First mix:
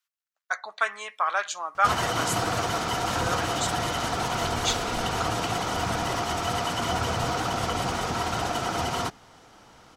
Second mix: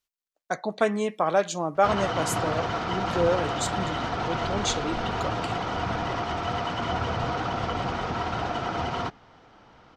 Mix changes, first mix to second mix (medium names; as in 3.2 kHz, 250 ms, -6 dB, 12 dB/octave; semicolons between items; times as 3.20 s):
speech: remove resonant high-pass 1.3 kHz, resonance Q 2; background: add distance through air 200 m